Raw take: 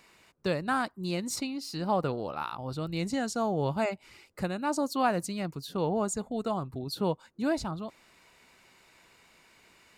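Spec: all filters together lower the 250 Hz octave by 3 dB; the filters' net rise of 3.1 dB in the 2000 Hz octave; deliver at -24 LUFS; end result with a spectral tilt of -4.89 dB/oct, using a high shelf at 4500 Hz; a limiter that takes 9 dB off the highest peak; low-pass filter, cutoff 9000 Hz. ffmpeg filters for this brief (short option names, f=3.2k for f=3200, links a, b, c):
-af "lowpass=9k,equalizer=f=250:t=o:g=-4,equalizer=f=2k:t=o:g=5,highshelf=f=4.5k:g=-3.5,volume=11dB,alimiter=limit=-12.5dB:level=0:latency=1"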